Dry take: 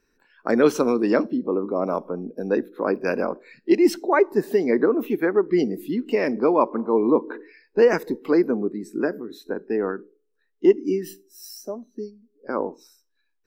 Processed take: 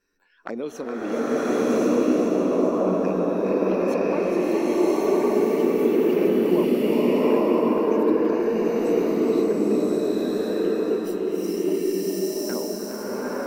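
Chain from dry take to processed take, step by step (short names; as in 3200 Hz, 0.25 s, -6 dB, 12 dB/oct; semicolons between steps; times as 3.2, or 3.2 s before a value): compressor 4:1, threshold -26 dBFS, peak gain reduction 13.5 dB; low shelf 480 Hz -3.5 dB; envelope flanger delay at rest 10.9 ms, full sweep at -28 dBFS; on a send: split-band echo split 500 Hz, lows 0.553 s, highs 0.416 s, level -7 dB; on the sum: bloom reverb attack 1.07 s, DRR -11 dB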